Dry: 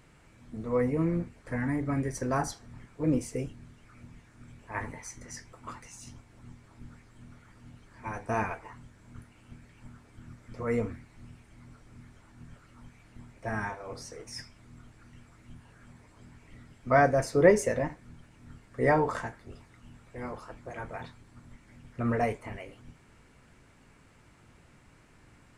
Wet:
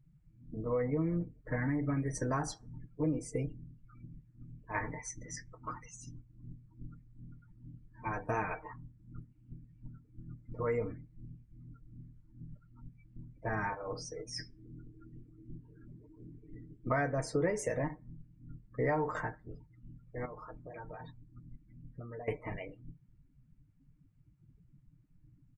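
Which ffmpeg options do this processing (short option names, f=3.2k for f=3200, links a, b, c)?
-filter_complex "[0:a]asettb=1/sr,asplit=3[a][b][c];[a]atrim=end=14.394[d];[b]atrim=start=14.39:end=16.89,asetpts=PTS-STARTPTS,afade=t=in:d=0.004:c=qsin,afade=t=out:st=2.496:d=0.004:c=qsin,equalizer=f=360:t=o:w=0.77:g=9[e];[c]atrim=start=16.886[f];[d][e]acrossfade=d=0.004:c1=hsin:c2=qsin[g];[g][f]acrossfade=d=0.004:c1=qsin:c2=hsin,asettb=1/sr,asplit=3[h][i][j];[h]atrim=end=20.254[k];[i]atrim=start=20.25:end=22.28,asetpts=PTS-STARTPTS,afade=t=in:d=0.004:c=qsin,afade=t=out:st=2.026:d=0.004:c=qsin,acompressor=threshold=-42dB:ratio=8:attack=3.2:release=140:knee=1:detection=peak[l];[j]atrim=start=22.276[m];[k][l]acrossfade=d=0.004:c1=hsin:c2=qsin[n];[n][m]acrossfade=d=0.004:c1=qsin:c2=hsin,afftdn=nr=32:nf=-47,aecho=1:1:6.5:0.54,acompressor=threshold=-30dB:ratio=4"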